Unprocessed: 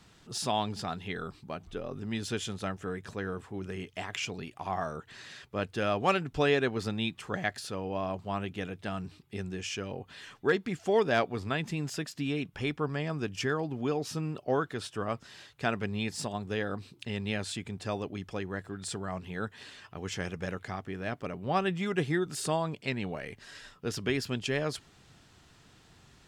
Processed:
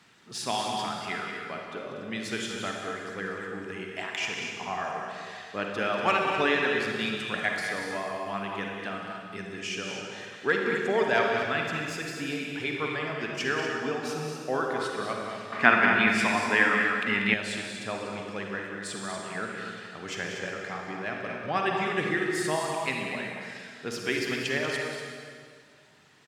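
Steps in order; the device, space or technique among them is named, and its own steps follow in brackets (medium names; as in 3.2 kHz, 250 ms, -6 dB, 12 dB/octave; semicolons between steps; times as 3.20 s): reverb removal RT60 1.7 s; stadium PA (high-pass 160 Hz 12 dB/octave; peaking EQ 1.9 kHz +7 dB 1.3 oct; loudspeakers at several distances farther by 65 m -9 dB, 82 m -9 dB; reverberation RT60 2.1 s, pre-delay 42 ms, DRR 1 dB); 15.52–17.34 s: ten-band graphic EQ 250 Hz +10 dB, 1 kHz +9 dB, 2 kHz +11 dB; trim -1.5 dB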